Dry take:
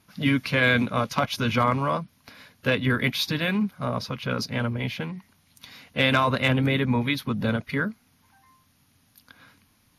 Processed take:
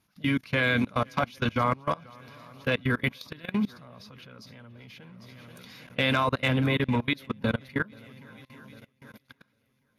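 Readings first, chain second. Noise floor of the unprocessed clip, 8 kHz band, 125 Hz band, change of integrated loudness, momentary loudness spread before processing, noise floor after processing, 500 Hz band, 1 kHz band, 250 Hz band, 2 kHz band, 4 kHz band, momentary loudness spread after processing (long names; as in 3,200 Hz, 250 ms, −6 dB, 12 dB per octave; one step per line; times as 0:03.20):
−64 dBFS, −11.5 dB, −4.5 dB, −3.0 dB, 10 LU, −72 dBFS, −4.0 dB, −3.5 dB, −4.0 dB, −4.0 dB, −5.5 dB, 23 LU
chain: feedback echo with a long and a short gap by turns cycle 800 ms, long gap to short 1.5 to 1, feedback 47%, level −18.5 dB
output level in coarse steps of 24 dB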